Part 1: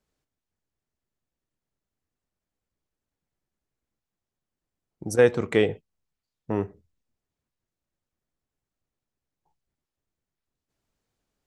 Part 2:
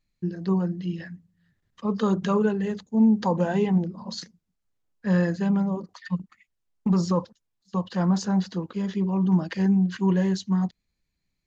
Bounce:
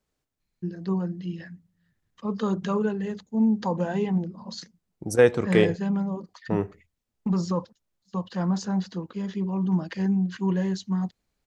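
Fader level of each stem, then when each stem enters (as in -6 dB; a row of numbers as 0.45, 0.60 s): +0.5, -3.0 dB; 0.00, 0.40 s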